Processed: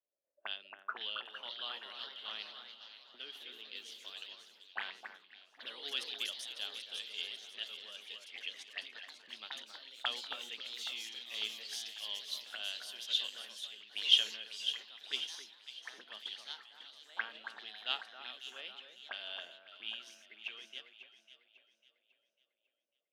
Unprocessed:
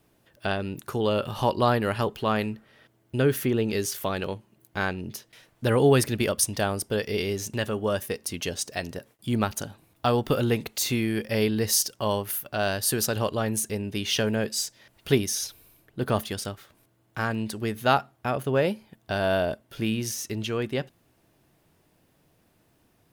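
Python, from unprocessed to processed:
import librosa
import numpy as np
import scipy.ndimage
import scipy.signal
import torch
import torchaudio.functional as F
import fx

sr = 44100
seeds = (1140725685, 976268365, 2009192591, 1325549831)

y = scipy.signal.sosfilt(scipy.signal.butter(6, 190.0, 'highpass', fs=sr, output='sos'), x)
y = fx.auto_wah(y, sr, base_hz=550.0, top_hz=3200.0, q=9.3, full_db=-27.5, direction='up')
y = fx.echo_alternate(y, sr, ms=274, hz=1900.0, feedback_pct=73, wet_db=-4.5)
y = fx.echo_pitch(y, sr, ms=556, semitones=2, count=3, db_per_echo=-6.0)
y = fx.band_widen(y, sr, depth_pct=70)
y = y * 10.0 ** (1.0 / 20.0)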